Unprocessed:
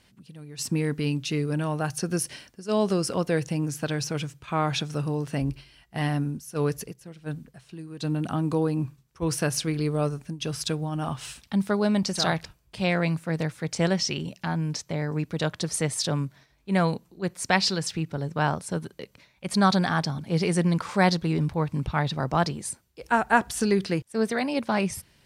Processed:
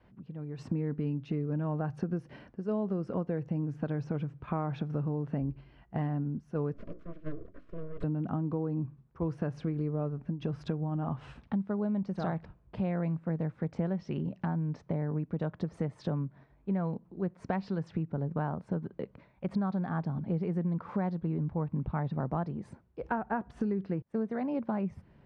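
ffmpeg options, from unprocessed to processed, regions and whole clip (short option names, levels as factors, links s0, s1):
-filter_complex "[0:a]asettb=1/sr,asplit=3[s0][s1][s2];[s0]atrim=end=6.744[s3];[s1]atrim=start=6.74:end=8.04,asetpts=PTS-STARTPTS,afade=t=in:d=0.004:c=qsin,afade=t=out:st=1.296:d=0.004:c=qsin,bandreject=f=60:t=h:w=6,bandreject=f=120:t=h:w=6,bandreject=f=180:t=h:w=6,bandreject=f=240:t=h:w=6,bandreject=f=300:t=h:w=6,bandreject=f=360:t=h:w=6,aeval=exprs='abs(val(0))':c=same,asuperstop=centerf=830:order=8:qfactor=2.7[s4];[s2]atrim=start=8.036[s5];[s3][s4]acrossfade=d=0.004:c1=hsin:c2=qsin[s6];[s6][s5]acrossfade=d=0.004:c1=qsin:c2=hsin,lowpass=1100,adynamicequalizer=threshold=0.0158:dfrequency=200:dqfactor=1.5:tfrequency=200:tqfactor=1.5:attack=5:release=100:ratio=0.375:range=2.5:mode=boostabove:tftype=bell,acompressor=threshold=0.0224:ratio=6,volume=1.41"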